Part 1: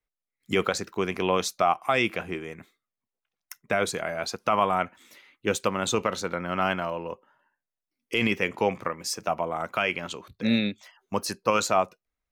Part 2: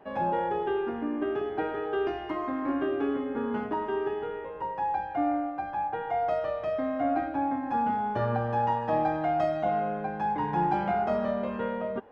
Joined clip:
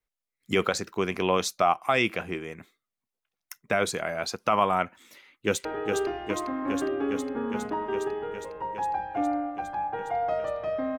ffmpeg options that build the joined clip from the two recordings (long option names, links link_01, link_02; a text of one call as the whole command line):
ffmpeg -i cue0.wav -i cue1.wav -filter_complex "[0:a]apad=whole_dur=10.98,atrim=end=10.98,atrim=end=5.652[link_01];[1:a]atrim=start=1.648:end=6.98[link_02];[link_01][link_02]acrossfade=duration=0.004:curve1=hsin:curve2=hsin,asplit=2[link_03][link_04];[link_04]afade=type=in:start_time=5.03:duration=0.01,afade=type=out:start_time=5.65:duration=0.01,aecho=0:1:410|820|1230|1640|2050|2460|2870|3280|3690|4100|4510|4920:0.530884|0.424708|0.339766|0.271813|0.21745|0.17396|0.139168|0.111335|0.0890676|0.0712541|0.0570033|0.0456026[link_05];[link_03][link_05]amix=inputs=2:normalize=0" out.wav